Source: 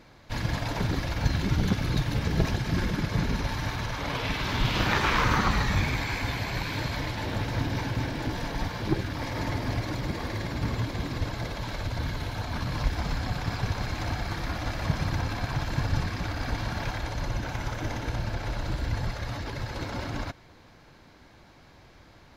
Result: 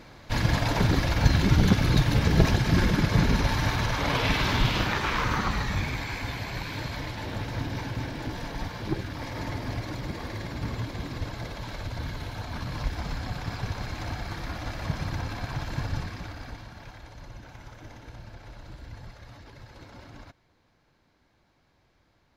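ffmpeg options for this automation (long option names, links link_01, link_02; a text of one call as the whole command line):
ffmpeg -i in.wav -af "volume=5dB,afade=type=out:start_time=4.39:duration=0.54:silence=0.398107,afade=type=out:start_time=15.82:duration=0.87:silence=0.298538" out.wav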